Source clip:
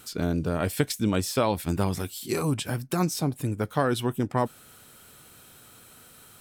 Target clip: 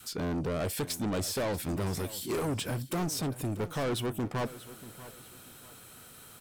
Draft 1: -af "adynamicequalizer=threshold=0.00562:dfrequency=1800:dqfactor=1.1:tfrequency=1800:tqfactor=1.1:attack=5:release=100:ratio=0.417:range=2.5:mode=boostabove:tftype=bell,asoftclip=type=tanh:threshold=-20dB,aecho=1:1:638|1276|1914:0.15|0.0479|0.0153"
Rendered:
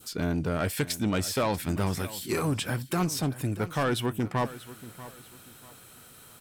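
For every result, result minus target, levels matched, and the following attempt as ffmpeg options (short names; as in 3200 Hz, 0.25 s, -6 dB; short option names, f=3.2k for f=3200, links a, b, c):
soft clip: distortion -7 dB; 2000 Hz band +2.5 dB
-af "adynamicequalizer=threshold=0.00562:dfrequency=1800:dqfactor=1.1:tfrequency=1800:tqfactor=1.1:attack=5:release=100:ratio=0.417:range=2.5:mode=boostabove:tftype=bell,asoftclip=type=tanh:threshold=-28.5dB,aecho=1:1:638|1276|1914:0.15|0.0479|0.0153"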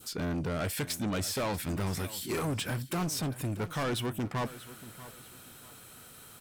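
2000 Hz band +2.5 dB
-af "adynamicequalizer=threshold=0.00562:dfrequency=450:dqfactor=1.1:tfrequency=450:tqfactor=1.1:attack=5:release=100:ratio=0.417:range=2.5:mode=boostabove:tftype=bell,asoftclip=type=tanh:threshold=-28.5dB,aecho=1:1:638|1276|1914:0.15|0.0479|0.0153"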